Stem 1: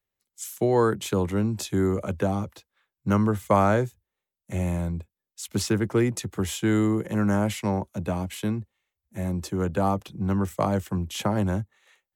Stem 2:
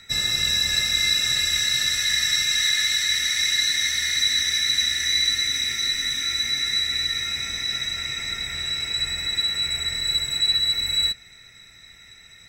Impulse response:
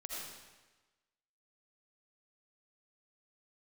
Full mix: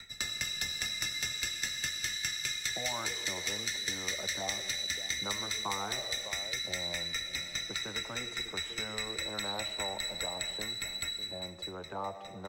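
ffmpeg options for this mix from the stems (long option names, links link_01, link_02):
-filter_complex "[0:a]bandpass=frequency=550:width_type=q:width=1.5:csg=0,adelay=2150,volume=-1dB,asplit=3[link_01][link_02][link_03];[link_02]volume=-11dB[link_04];[link_03]volume=-18.5dB[link_05];[1:a]aeval=exprs='val(0)*pow(10,-36*if(lt(mod(4.9*n/s,1),2*abs(4.9)/1000),1-mod(4.9*n/s,1)/(2*abs(4.9)/1000),(mod(4.9*n/s,1)-2*abs(4.9)/1000)/(1-2*abs(4.9)/1000))/20)':channel_layout=same,volume=0dB,asplit=3[link_06][link_07][link_08];[link_07]volume=-4.5dB[link_09];[link_08]volume=-13dB[link_10];[2:a]atrim=start_sample=2205[link_11];[link_04][link_09]amix=inputs=2:normalize=0[link_12];[link_12][link_11]afir=irnorm=-1:irlink=0[link_13];[link_05][link_10]amix=inputs=2:normalize=0,aecho=0:1:600:1[link_14];[link_01][link_06][link_13][link_14]amix=inputs=4:normalize=0,afftfilt=real='re*lt(hypot(re,im),0.316)':imag='im*lt(hypot(re,im),0.316)':win_size=1024:overlap=0.75,acrossover=split=130|710|6300[link_15][link_16][link_17][link_18];[link_15]acompressor=threshold=-51dB:ratio=4[link_19];[link_16]acompressor=threshold=-50dB:ratio=4[link_20];[link_17]acompressor=threshold=-33dB:ratio=4[link_21];[link_18]acompressor=threshold=-41dB:ratio=4[link_22];[link_19][link_20][link_21][link_22]amix=inputs=4:normalize=0"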